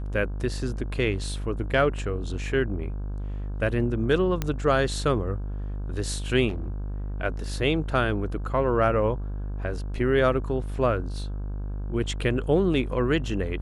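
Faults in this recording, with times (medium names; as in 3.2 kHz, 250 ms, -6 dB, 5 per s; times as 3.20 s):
buzz 50 Hz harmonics 33 -31 dBFS
4.42 s: pop -12 dBFS
6.48–6.70 s: clipped -26 dBFS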